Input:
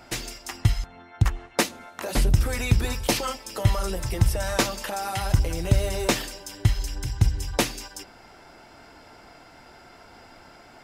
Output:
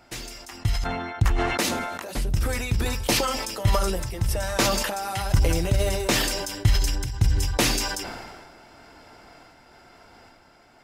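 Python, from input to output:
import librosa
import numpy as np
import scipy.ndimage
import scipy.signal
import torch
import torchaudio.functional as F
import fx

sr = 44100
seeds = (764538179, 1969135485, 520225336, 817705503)

y = fx.tremolo_random(x, sr, seeds[0], hz=3.5, depth_pct=55)
y = fx.sustainer(y, sr, db_per_s=33.0)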